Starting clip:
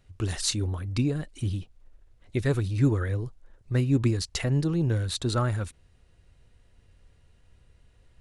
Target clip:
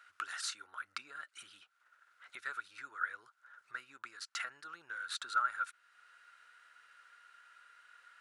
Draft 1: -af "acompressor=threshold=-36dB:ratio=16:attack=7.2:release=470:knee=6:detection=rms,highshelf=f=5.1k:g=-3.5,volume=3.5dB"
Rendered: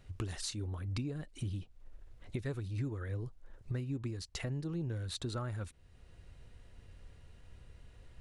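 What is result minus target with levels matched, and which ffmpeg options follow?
1000 Hz band -14.5 dB
-af "acompressor=threshold=-36dB:ratio=16:attack=7.2:release=470:knee=6:detection=rms,highpass=f=1.4k:t=q:w=11,highshelf=f=5.1k:g=-3.5,volume=3.5dB"

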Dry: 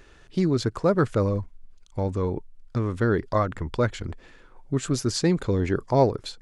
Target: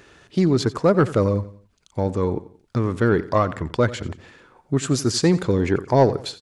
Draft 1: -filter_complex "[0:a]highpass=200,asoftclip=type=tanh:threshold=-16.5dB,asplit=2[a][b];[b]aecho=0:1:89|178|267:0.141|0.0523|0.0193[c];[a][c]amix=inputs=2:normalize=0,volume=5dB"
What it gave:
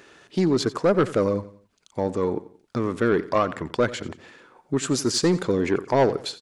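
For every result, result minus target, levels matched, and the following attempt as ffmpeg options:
soft clip: distortion +9 dB; 125 Hz band -5.0 dB
-filter_complex "[0:a]highpass=200,asoftclip=type=tanh:threshold=-9.5dB,asplit=2[a][b];[b]aecho=0:1:89|178|267:0.141|0.0523|0.0193[c];[a][c]amix=inputs=2:normalize=0,volume=5dB"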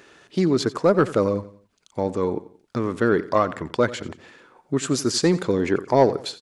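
125 Hz band -5.5 dB
-filter_complex "[0:a]highpass=94,asoftclip=type=tanh:threshold=-9.5dB,asplit=2[a][b];[b]aecho=0:1:89|178|267:0.141|0.0523|0.0193[c];[a][c]amix=inputs=2:normalize=0,volume=5dB"

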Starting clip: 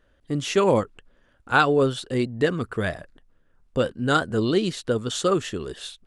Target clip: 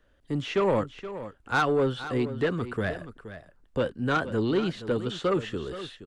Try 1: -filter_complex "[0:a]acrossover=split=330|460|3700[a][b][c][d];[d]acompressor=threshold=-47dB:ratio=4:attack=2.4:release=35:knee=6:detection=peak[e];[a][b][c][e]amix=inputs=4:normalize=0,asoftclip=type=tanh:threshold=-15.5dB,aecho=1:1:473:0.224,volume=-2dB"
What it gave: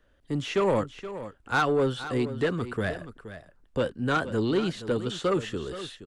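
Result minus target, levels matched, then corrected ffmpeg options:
compressor: peak gain reduction -8.5 dB
-filter_complex "[0:a]acrossover=split=330|460|3700[a][b][c][d];[d]acompressor=threshold=-58.5dB:ratio=4:attack=2.4:release=35:knee=6:detection=peak[e];[a][b][c][e]amix=inputs=4:normalize=0,asoftclip=type=tanh:threshold=-15.5dB,aecho=1:1:473:0.224,volume=-2dB"

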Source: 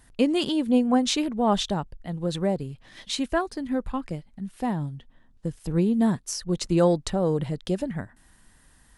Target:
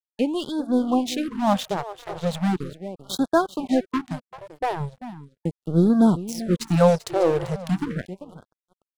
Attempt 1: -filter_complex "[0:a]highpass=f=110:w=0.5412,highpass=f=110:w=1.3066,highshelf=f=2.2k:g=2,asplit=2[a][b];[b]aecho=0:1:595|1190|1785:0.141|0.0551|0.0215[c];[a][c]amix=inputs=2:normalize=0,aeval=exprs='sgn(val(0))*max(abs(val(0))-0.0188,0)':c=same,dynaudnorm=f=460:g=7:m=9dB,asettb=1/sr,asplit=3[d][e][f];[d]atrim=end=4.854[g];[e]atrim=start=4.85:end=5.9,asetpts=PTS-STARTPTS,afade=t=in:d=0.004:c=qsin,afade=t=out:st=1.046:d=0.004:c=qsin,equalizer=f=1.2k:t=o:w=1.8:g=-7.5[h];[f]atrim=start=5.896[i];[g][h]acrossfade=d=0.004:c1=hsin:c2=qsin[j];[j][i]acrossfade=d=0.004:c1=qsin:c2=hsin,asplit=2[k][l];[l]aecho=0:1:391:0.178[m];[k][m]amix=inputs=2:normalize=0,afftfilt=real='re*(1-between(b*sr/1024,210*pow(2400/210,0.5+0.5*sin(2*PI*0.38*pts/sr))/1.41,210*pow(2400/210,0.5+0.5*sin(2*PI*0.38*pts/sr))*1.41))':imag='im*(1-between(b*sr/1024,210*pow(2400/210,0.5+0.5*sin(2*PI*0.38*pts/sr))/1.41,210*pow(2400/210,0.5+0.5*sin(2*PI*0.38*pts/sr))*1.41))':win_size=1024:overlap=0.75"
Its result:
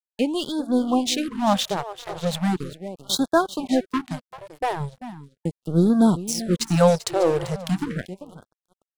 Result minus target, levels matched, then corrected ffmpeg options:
4000 Hz band +6.0 dB
-filter_complex "[0:a]highpass=f=110:w=0.5412,highpass=f=110:w=1.3066,highshelf=f=2.2k:g=-4.5,asplit=2[a][b];[b]aecho=0:1:595|1190|1785:0.141|0.0551|0.0215[c];[a][c]amix=inputs=2:normalize=0,aeval=exprs='sgn(val(0))*max(abs(val(0))-0.0188,0)':c=same,dynaudnorm=f=460:g=7:m=9dB,asettb=1/sr,asplit=3[d][e][f];[d]atrim=end=4.854[g];[e]atrim=start=4.85:end=5.9,asetpts=PTS-STARTPTS,afade=t=in:d=0.004:c=qsin,afade=t=out:st=1.046:d=0.004:c=qsin,equalizer=f=1.2k:t=o:w=1.8:g=-7.5[h];[f]atrim=start=5.896[i];[g][h]acrossfade=d=0.004:c1=hsin:c2=qsin[j];[j][i]acrossfade=d=0.004:c1=qsin:c2=hsin,asplit=2[k][l];[l]aecho=0:1:391:0.178[m];[k][m]amix=inputs=2:normalize=0,afftfilt=real='re*(1-between(b*sr/1024,210*pow(2400/210,0.5+0.5*sin(2*PI*0.38*pts/sr))/1.41,210*pow(2400/210,0.5+0.5*sin(2*PI*0.38*pts/sr))*1.41))':imag='im*(1-between(b*sr/1024,210*pow(2400/210,0.5+0.5*sin(2*PI*0.38*pts/sr))/1.41,210*pow(2400/210,0.5+0.5*sin(2*PI*0.38*pts/sr))*1.41))':win_size=1024:overlap=0.75"

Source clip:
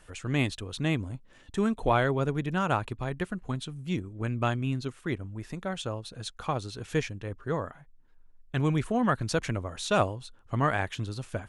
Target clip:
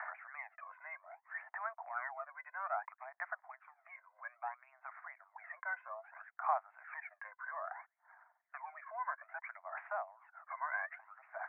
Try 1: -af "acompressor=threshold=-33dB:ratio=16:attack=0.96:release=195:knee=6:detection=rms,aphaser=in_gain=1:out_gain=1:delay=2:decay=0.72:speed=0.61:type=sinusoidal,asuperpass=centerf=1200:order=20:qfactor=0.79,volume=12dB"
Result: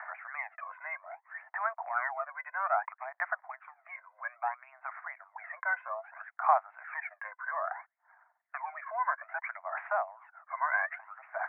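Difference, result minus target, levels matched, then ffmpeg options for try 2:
compressor: peak gain reduction -9 dB
-af "acompressor=threshold=-42.5dB:ratio=16:attack=0.96:release=195:knee=6:detection=rms,aphaser=in_gain=1:out_gain=1:delay=2:decay=0.72:speed=0.61:type=sinusoidal,asuperpass=centerf=1200:order=20:qfactor=0.79,volume=12dB"

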